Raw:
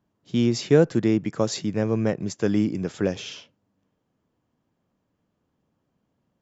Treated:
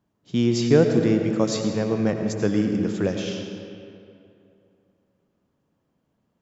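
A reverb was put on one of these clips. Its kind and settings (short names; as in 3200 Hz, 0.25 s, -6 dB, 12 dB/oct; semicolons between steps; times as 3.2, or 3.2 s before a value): digital reverb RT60 2.6 s, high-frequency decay 0.65×, pre-delay 50 ms, DRR 4.5 dB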